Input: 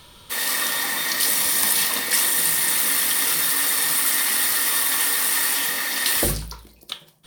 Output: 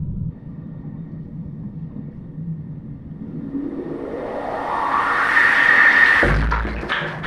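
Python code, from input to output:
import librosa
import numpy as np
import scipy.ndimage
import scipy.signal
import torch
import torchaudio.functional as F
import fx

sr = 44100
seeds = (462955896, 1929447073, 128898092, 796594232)

y = fx.power_curve(x, sr, exponent=0.35)
y = fx.filter_sweep_lowpass(y, sr, from_hz=160.0, to_hz=1700.0, start_s=3.06, end_s=5.39, q=3.6)
y = y * librosa.db_to_amplitude(-4.0)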